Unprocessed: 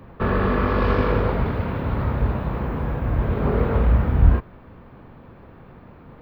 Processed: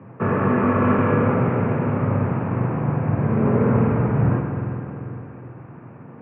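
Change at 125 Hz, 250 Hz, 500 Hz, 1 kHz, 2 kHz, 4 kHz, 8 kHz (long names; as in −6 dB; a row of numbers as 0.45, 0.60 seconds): +2.0 dB, +6.0 dB, +2.5 dB, +2.0 dB, +0.5 dB, below −10 dB, can't be measured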